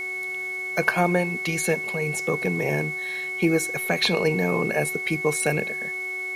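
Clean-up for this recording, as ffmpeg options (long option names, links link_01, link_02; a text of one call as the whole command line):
ffmpeg -i in.wav -af "bandreject=frequency=373.7:width_type=h:width=4,bandreject=frequency=747.4:width_type=h:width=4,bandreject=frequency=1121.1:width_type=h:width=4,bandreject=frequency=1494.8:width_type=h:width=4,bandreject=frequency=2200:width=30,afwtdn=0.0032" out.wav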